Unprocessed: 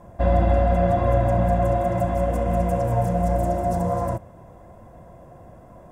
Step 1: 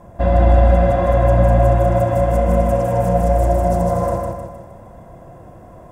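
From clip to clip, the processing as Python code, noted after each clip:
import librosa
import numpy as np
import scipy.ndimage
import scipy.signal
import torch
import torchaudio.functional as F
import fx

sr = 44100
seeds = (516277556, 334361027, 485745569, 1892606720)

y = fx.echo_feedback(x, sr, ms=155, feedback_pct=46, wet_db=-3)
y = y * 10.0 ** (3.5 / 20.0)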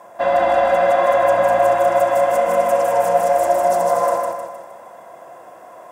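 y = scipy.signal.sosfilt(scipy.signal.butter(2, 700.0, 'highpass', fs=sr, output='sos'), x)
y = y * 10.0 ** (7.0 / 20.0)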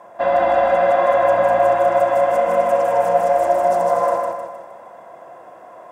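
y = fx.high_shelf(x, sr, hz=5100.0, db=-12.0)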